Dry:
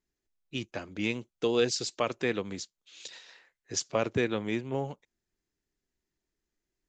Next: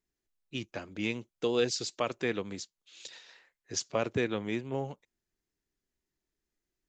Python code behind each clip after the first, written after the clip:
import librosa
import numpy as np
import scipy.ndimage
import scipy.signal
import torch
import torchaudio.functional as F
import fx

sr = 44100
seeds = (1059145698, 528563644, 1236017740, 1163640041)

y = fx.wow_flutter(x, sr, seeds[0], rate_hz=2.1, depth_cents=28.0)
y = y * 10.0 ** (-2.0 / 20.0)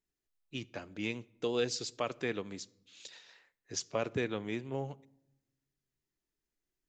y = fx.room_shoebox(x, sr, seeds[1], volume_m3=2900.0, walls='furnished', distance_m=0.32)
y = y * 10.0 ** (-3.5 / 20.0)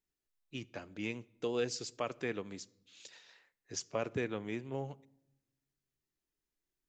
y = fx.dynamic_eq(x, sr, hz=3800.0, q=2.9, threshold_db=-56.0, ratio=4.0, max_db=-6)
y = y * 10.0 ** (-2.0 / 20.0)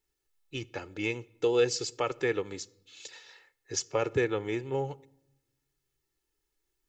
y = x + 0.66 * np.pad(x, (int(2.3 * sr / 1000.0), 0))[:len(x)]
y = y * 10.0 ** (6.0 / 20.0)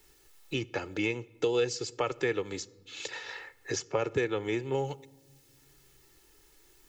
y = fx.band_squash(x, sr, depth_pct=70)